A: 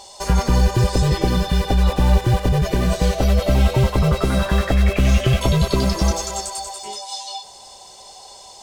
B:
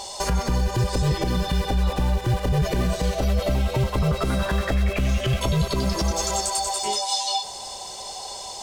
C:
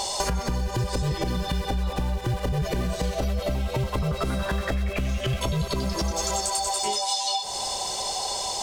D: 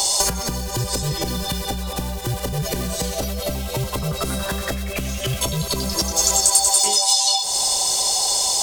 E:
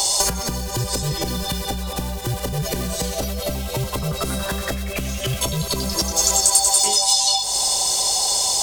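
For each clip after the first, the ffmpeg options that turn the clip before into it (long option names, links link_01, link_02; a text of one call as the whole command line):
ffmpeg -i in.wav -filter_complex "[0:a]asplit=2[link_01][link_02];[link_02]acompressor=threshold=-25dB:ratio=6,volume=1dB[link_03];[link_01][link_03]amix=inputs=2:normalize=0,alimiter=limit=-13.5dB:level=0:latency=1:release=180" out.wav
ffmpeg -i in.wav -af "acompressor=threshold=-30dB:ratio=6,volume=6.5dB" out.wav
ffmpeg -i in.wav -filter_complex "[0:a]acrossover=split=100|640|2600[link_01][link_02][link_03][link_04];[link_01]alimiter=level_in=5.5dB:limit=-24dB:level=0:latency=1,volume=-5.5dB[link_05];[link_04]crystalizer=i=3:c=0[link_06];[link_05][link_02][link_03][link_06]amix=inputs=4:normalize=0,volume=2dB" out.wav
ffmpeg -i in.wav -af "aeval=exprs='val(0)+0.00355*(sin(2*PI*50*n/s)+sin(2*PI*2*50*n/s)/2+sin(2*PI*3*50*n/s)/3+sin(2*PI*4*50*n/s)/4+sin(2*PI*5*50*n/s)/5)':channel_layout=same" out.wav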